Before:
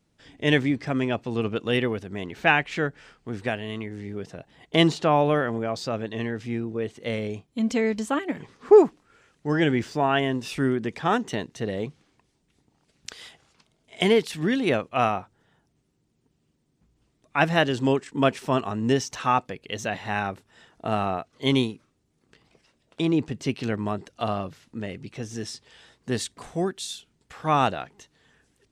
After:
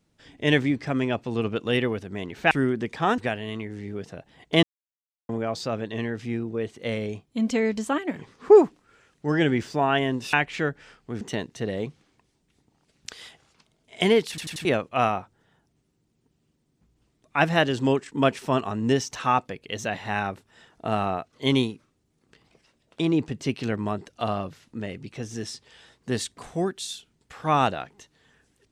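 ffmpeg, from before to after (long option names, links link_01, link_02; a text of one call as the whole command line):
ffmpeg -i in.wav -filter_complex "[0:a]asplit=11[link_01][link_02][link_03][link_04][link_05][link_06][link_07][link_08][link_09][link_10][link_11];[link_01]atrim=end=2.512[link_12];[link_02]atrim=start=10.538:end=11.212[link_13];[link_03]atrim=start=3.388:end=4.84,asetpts=PTS-STARTPTS,afade=type=out:start_time=1.448:duration=0.004:curve=hsin[link_14];[link_04]atrim=start=4.84:end=5.5,asetpts=PTS-STARTPTS,volume=0[link_15];[link_05]atrim=start=5.5:end=10.542,asetpts=PTS-STARTPTS,afade=type=in:duration=0.004:curve=hsin[link_16];[link_06]atrim=start=2.508:end=3.392[link_17];[link_07]atrim=start=11.208:end=14.382[link_18];[link_08]atrim=start=14.288:end=14.382[link_19];[link_09]atrim=start=14.288:end=14.382[link_20];[link_10]atrim=start=14.288:end=14.382[link_21];[link_11]atrim=start=14.648[link_22];[link_12][link_13]acrossfade=duration=0.004:curve1=hsin:curve2=hsin[link_23];[link_14][link_15][link_16]concat=n=3:v=0:a=1[link_24];[link_23][link_24]acrossfade=duration=0.004:curve1=hsin:curve2=hsin[link_25];[link_25][link_17]acrossfade=duration=0.004:curve1=hsin:curve2=hsin[link_26];[link_26][link_18]acrossfade=duration=0.004:curve1=hsin:curve2=hsin[link_27];[link_27][link_19]acrossfade=duration=0.004:curve1=hsin:curve2=hsin[link_28];[link_28][link_20]acrossfade=duration=0.004:curve1=hsin:curve2=hsin[link_29];[link_29][link_21]acrossfade=duration=0.004:curve1=hsin:curve2=hsin[link_30];[link_30][link_22]acrossfade=duration=0.004:curve1=hsin:curve2=hsin" out.wav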